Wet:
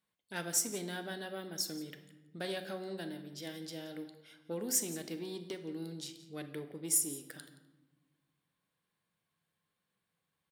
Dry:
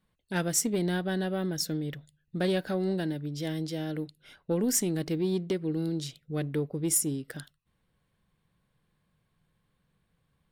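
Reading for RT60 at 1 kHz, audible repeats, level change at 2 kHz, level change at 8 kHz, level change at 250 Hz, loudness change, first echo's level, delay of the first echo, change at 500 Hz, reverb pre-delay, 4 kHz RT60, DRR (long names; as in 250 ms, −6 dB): 1.1 s, 1, −6.0 dB, −3.0 dB, −12.5 dB, −7.0 dB, −17.5 dB, 173 ms, −10.5 dB, 10 ms, 0.70 s, 7.5 dB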